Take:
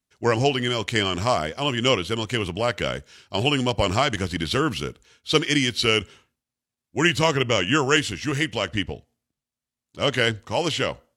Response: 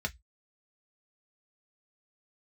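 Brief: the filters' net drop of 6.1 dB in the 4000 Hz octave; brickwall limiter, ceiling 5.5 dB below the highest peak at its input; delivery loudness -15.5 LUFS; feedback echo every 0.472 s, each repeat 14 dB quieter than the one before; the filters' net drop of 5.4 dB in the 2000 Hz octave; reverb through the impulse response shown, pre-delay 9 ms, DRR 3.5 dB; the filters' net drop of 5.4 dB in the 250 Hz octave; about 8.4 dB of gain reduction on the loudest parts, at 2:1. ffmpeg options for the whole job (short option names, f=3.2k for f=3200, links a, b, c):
-filter_complex "[0:a]equalizer=f=250:t=o:g=-7.5,equalizer=f=2k:t=o:g=-5,equalizer=f=4k:t=o:g=-6.5,acompressor=threshold=-33dB:ratio=2,alimiter=limit=-22dB:level=0:latency=1,aecho=1:1:472|944:0.2|0.0399,asplit=2[a][b];[1:a]atrim=start_sample=2205,adelay=9[c];[b][c]afir=irnorm=-1:irlink=0,volume=-7.5dB[d];[a][d]amix=inputs=2:normalize=0,volume=17dB"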